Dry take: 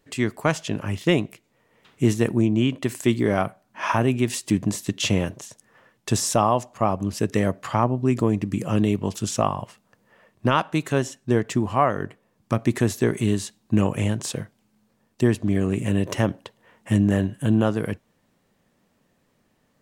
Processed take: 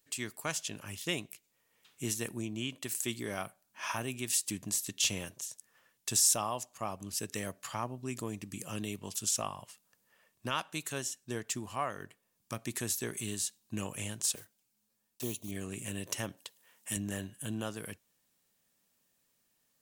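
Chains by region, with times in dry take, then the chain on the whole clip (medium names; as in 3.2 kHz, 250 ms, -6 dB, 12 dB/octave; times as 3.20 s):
14.35–15.52 s: block-companded coder 5-bit + bass shelf 110 Hz -4.5 dB + touch-sensitive flanger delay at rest 9.7 ms, full sweep at -20 dBFS
16.37–16.97 s: high-pass 160 Hz 6 dB/octave + treble shelf 4.1 kHz +7 dB
whole clip: pre-emphasis filter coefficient 0.9; band-stop 2 kHz, Q 24; trim +1 dB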